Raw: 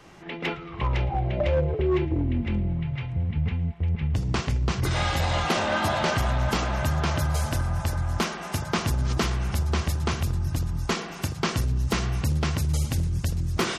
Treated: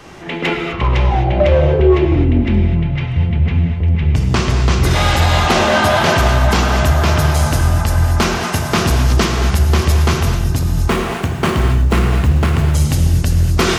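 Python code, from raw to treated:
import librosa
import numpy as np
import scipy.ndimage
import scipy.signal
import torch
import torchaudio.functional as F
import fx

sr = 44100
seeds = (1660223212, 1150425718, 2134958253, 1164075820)

p1 = fx.median_filter(x, sr, points=9, at=(10.89, 12.75))
p2 = 10.0 ** (-26.5 / 20.0) * np.tanh(p1 / 10.0 ** (-26.5 / 20.0))
p3 = p1 + F.gain(torch.from_numpy(p2), -3.0).numpy()
p4 = fx.rev_gated(p3, sr, seeds[0], gate_ms=280, shape='flat', drr_db=2.5)
y = F.gain(torch.from_numpy(p4), 7.0).numpy()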